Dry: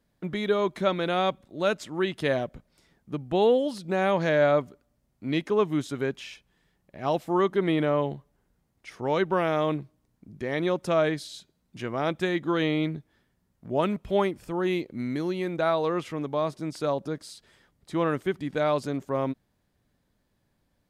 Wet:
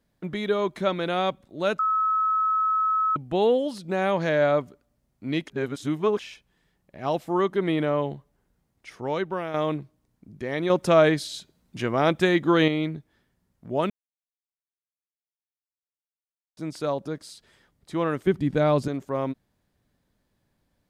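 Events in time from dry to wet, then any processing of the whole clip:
1.79–3.16 s: bleep 1.29 kHz -20 dBFS
5.48–6.19 s: reverse
8.90–9.54 s: fade out, to -8 dB
10.70–12.68 s: gain +6 dB
13.90–16.57 s: mute
18.27–18.88 s: bass shelf 340 Hz +12 dB

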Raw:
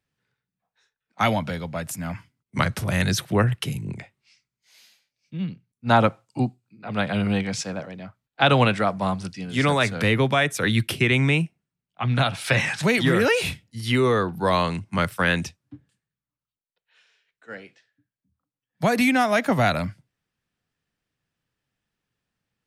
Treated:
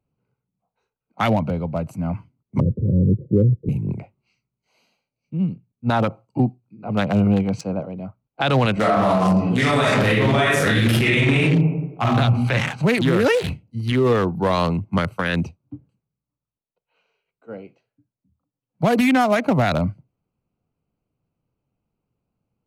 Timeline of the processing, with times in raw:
2.60–3.69 s: steep low-pass 530 Hz 96 dB/octave
8.73–12.17 s: reverb throw, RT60 0.99 s, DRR -7.5 dB
whole clip: local Wiener filter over 25 samples; treble shelf 10 kHz +3.5 dB; peak limiter -16.5 dBFS; trim +7 dB

